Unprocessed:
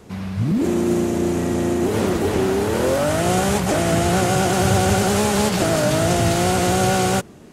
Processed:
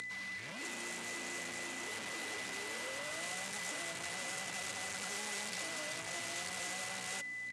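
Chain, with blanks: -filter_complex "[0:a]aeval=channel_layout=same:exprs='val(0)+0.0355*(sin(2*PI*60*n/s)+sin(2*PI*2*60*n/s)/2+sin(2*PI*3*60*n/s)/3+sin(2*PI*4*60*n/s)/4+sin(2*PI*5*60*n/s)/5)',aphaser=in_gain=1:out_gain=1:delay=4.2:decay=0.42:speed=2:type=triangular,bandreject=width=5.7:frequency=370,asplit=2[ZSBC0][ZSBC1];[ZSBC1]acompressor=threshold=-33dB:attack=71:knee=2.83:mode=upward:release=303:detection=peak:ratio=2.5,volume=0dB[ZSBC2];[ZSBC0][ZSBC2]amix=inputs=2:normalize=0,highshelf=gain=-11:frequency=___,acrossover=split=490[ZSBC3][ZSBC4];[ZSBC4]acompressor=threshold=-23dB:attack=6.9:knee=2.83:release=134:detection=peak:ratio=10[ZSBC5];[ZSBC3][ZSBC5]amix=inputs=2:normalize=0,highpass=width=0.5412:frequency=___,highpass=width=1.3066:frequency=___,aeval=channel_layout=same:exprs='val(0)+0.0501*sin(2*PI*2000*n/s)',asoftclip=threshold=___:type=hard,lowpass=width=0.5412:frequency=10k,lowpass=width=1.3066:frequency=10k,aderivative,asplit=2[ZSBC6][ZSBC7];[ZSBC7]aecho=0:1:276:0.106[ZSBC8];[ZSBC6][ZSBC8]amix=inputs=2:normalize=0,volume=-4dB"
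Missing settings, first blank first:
5.5k, 75, 75, -16.5dB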